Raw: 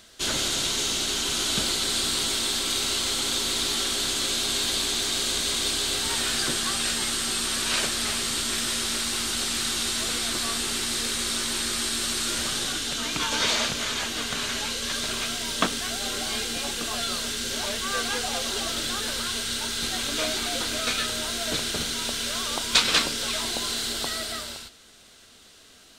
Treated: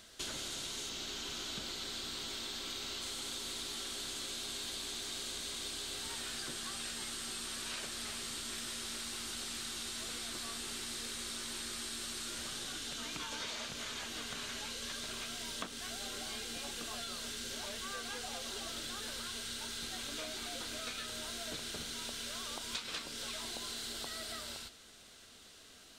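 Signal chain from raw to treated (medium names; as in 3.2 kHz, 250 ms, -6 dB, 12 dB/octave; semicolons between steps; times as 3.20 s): 0.89–3.02 s: peaking EQ 9.8 kHz -10 dB 0.62 oct; compression 5:1, threshold -35 dBFS, peak gain reduction 18 dB; trim -5 dB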